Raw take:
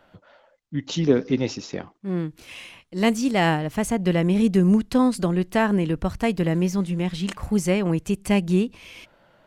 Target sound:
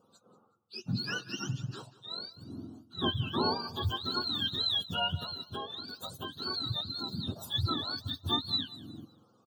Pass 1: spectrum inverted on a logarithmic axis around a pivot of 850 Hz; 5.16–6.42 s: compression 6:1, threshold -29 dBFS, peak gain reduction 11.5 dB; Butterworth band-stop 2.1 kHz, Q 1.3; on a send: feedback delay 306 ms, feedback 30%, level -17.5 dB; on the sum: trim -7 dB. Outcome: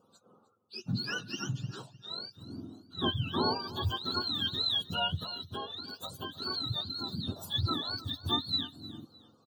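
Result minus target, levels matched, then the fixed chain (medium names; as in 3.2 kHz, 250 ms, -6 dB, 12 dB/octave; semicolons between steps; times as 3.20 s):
echo 121 ms late
spectrum inverted on a logarithmic axis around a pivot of 850 Hz; 5.16–6.42 s: compression 6:1, threshold -29 dBFS, peak gain reduction 11.5 dB; Butterworth band-stop 2.1 kHz, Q 1.3; on a send: feedback delay 185 ms, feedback 30%, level -17.5 dB; on the sum: trim -7 dB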